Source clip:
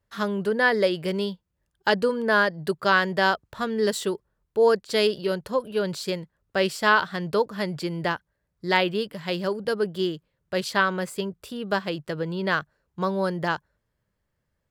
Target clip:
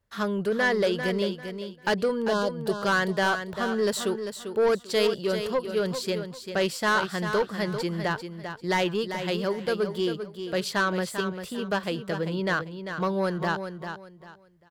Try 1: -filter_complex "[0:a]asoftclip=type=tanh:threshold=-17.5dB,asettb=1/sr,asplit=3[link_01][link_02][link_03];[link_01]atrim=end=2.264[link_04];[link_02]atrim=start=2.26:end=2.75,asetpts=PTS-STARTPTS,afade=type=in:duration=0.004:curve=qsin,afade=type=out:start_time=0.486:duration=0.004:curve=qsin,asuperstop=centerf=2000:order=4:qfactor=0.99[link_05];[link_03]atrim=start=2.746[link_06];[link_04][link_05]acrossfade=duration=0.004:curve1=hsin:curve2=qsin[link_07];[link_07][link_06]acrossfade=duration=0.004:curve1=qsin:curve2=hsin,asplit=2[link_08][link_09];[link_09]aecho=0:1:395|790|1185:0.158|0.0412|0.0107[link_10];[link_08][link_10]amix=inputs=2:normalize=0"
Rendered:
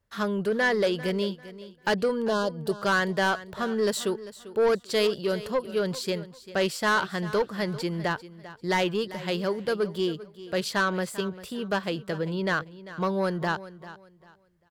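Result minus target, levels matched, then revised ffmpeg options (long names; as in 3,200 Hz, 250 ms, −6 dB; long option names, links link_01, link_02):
echo-to-direct −7.5 dB
-filter_complex "[0:a]asoftclip=type=tanh:threshold=-17.5dB,asettb=1/sr,asplit=3[link_01][link_02][link_03];[link_01]atrim=end=2.264[link_04];[link_02]atrim=start=2.26:end=2.75,asetpts=PTS-STARTPTS,afade=type=in:duration=0.004:curve=qsin,afade=type=out:start_time=0.486:duration=0.004:curve=qsin,asuperstop=centerf=2000:order=4:qfactor=0.99[link_05];[link_03]atrim=start=2.746[link_06];[link_04][link_05]acrossfade=duration=0.004:curve1=hsin:curve2=qsin[link_07];[link_07][link_06]acrossfade=duration=0.004:curve1=qsin:curve2=hsin,asplit=2[link_08][link_09];[link_09]aecho=0:1:395|790|1185:0.376|0.0977|0.0254[link_10];[link_08][link_10]amix=inputs=2:normalize=0"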